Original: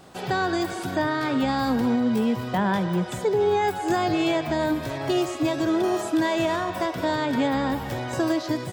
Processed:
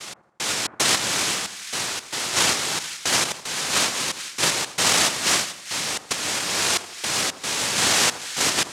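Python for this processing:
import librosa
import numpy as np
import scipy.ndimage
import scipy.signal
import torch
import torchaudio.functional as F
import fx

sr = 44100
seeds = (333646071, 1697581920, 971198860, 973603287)

y = fx.octave_divider(x, sr, octaves=1, level_db=2.0)
y = scipy.signal.sosfilt(scipy.signal.butter(2, 170.0, 'highpass', fs=sr, output='sos'), y)
y = fx.noise_vocoder(y, sr, seeds[0], bands=1)
y = fx.over_compress(y, sr, threshold_db=-31.0, ratio=-1.0)
y = fx.step_gate(y, sr, bpm=113, pattern='x..xx.xxxx', floor_db=-60.0, edge_ms=4.5)
y = fx.echo_split(y, sr, split_hz=1400.0, low_ms=81, high_ms=436, feedback_pct=52, wet_db=-12.5)
y = F.gain(torch.from_numpy(y), 7.0).numpy()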